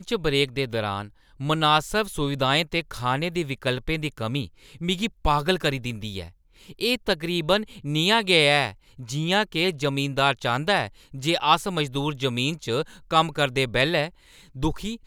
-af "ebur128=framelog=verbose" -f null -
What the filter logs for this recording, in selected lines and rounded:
Integrated loudness:
  I:         -24.0 LUFS
  Threshold: -34.3 LUFS
Loudness range:
  LRA:         4.4 LU
  Threshold: -44.2 LUFS
  LRA low:   -26.6 LUFS
  LRA high:  -22.2 LUFS